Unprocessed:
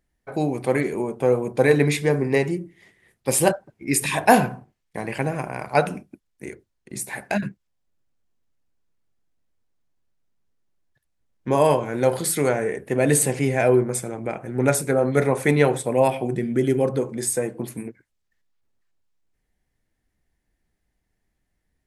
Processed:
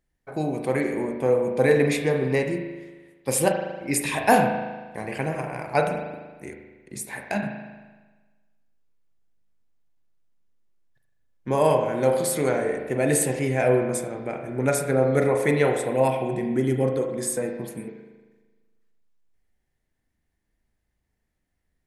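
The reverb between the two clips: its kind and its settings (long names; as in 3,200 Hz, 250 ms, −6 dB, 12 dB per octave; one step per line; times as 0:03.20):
spring reverb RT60 1.3 s, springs 38 ms, chirp 40 ms, DRR 4 dB
level −3.5 dB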